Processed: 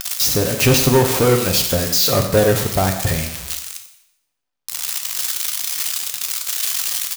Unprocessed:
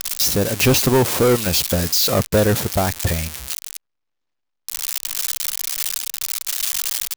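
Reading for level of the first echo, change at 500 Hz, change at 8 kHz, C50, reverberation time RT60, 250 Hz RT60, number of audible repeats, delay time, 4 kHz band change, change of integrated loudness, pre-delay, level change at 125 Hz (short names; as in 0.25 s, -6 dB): -13.5 dB, +2.0 dB, +1.5 dB, 7.5 dB, 0.80 s, 0.80 s, 1, 91 ms, +1.5 dB, +1.5 dB, 3 ms, +2.0 dB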